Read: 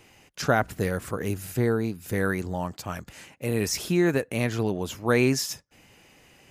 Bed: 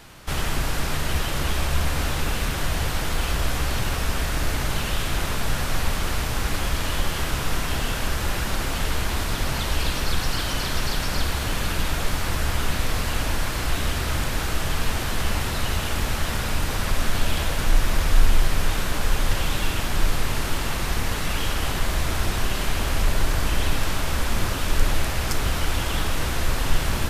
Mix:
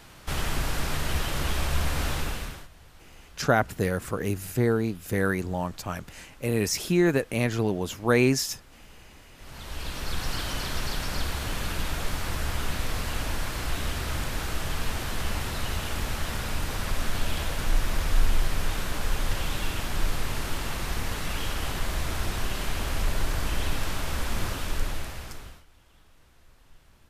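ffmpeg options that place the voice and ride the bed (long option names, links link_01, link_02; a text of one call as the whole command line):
ffmpeg -i stem1.wav -i stem2.wav -filter_complex "[0:a]adelay=3000,volume=0.5dB[link_01];[1:a]volume=18.5dB,afade=type=out:start_time=2.13:duration=0.55:silence=0.0630957,afade=type=in:start_time=9.36:duration=0.96:silence=0.0794328,afade=type=out:start_time=24.48:duration=1.16:silence=0.0354813[link_02];[link_01][link_02]amix=inputs=2:normalize=0" out.wav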